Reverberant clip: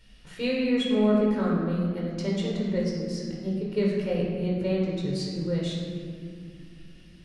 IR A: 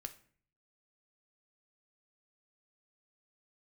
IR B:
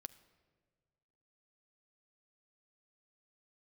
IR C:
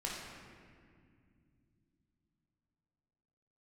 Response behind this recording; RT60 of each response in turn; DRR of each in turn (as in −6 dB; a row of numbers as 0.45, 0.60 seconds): C; 0.50, 1.7, 2.3 seconds; 7.0, 14.0, −4.5 decibels